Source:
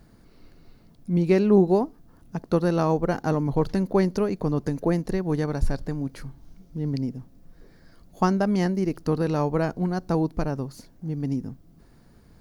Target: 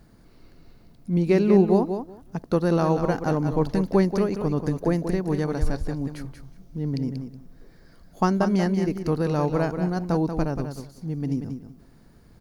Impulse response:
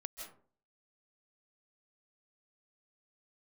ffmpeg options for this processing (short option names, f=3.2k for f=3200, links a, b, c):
-af "aecho=1:1:185|370|555:0.398|0.0637|0.0102"